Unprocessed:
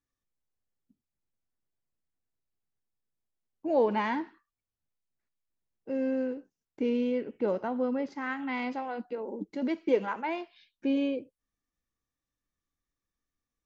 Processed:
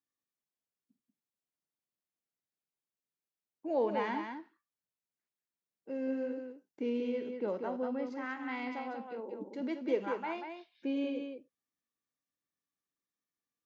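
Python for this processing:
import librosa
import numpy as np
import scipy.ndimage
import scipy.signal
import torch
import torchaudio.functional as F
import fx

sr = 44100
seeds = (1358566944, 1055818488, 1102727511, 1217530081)

p1 = scipy.signal.sosfilt(scipy.signal.butter(2, 170.0, 'highpass', fs=sr, output='sos'), x)
p2 = p1 + fx.echo_multitap(p1, sr, ms=(50, 189), db=(-14.5, -6.0), dry=0)
y = p2 * 10.0 ** (-6.0 / 20.0)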